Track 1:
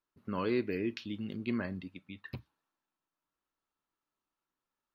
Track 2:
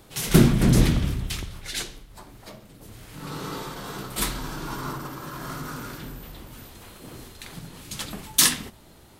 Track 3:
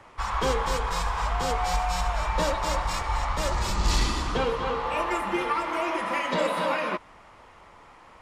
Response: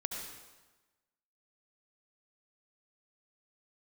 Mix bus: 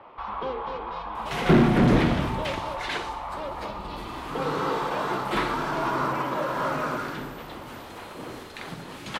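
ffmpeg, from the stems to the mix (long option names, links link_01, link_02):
-filter_complex "[0:a]alimiter=level_in=7dB:limit=-24dB:level=0:latency=1,volume=-7dB,volume=-15.5dB[link_01];[1:a]adelay=1150,volume=-3.5dB,asplit=2[link_02][link_03];[link_03]volume=-15.5dB[link_04];[2:a]acompressor=threshold=-37dB:ratio=2,lowpass=frequency=3800:width=0.5412,lowpass=frequency=3800:width=1.3066,equalizer=frequency=1800:width=1.7:gain=-9,volume=-6.5dB[link_05];[link_04]aecho=0:1:60|120|180|240|300|360|420|480|540:1|0.57|0.325|0.185|0.106|0.0602|0.0343|0.0195|0.0111[link_06];[link_01][link_02][link_05][link_06]amix=inputs=4:normalize=0,acrossover=split=3500[link_07][link_08];[link_08]acompressor=threshold=-47dB:ratio=4:attack=1:release=60[link_09];[link_07][link_09]amix=inputs=2:normalize=0,asplit=2[link_10][link_11];[link_11]highpass=frequency=720:poles=1,volume=22dB,asoftclip=type=tanh:threshold=-7dB[link_12];[link_10][link_12]amix=inputs=2:normalize=0,lowpass=frequency=1100:poles=1,volume=-6dB"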